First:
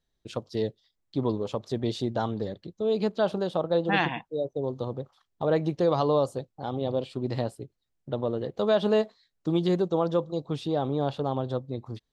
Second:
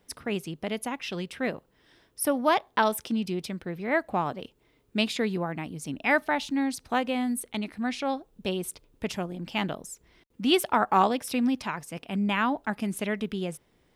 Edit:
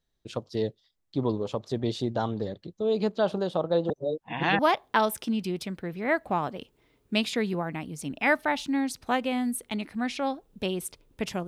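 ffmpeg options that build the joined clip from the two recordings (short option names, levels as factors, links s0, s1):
-filter_complex "[0:a]apad=whole_dur=11.47,atrim=end=11.47,asplit=2[s0][s1];[s0]atrim=end=3.902[s2];[s1]atrim=start=3.898:end=4.592,asetpts=PTS-STARTPTS,areverse[s3];[1:a]atrim=start=2.418:end=9.3[s4];[s2][s3]acrossfade=d=0.004:c1=hsin:c2=hsin[s5];[s5][s4]acrossfade=d=0.004:c1=hsin:c2=hsin"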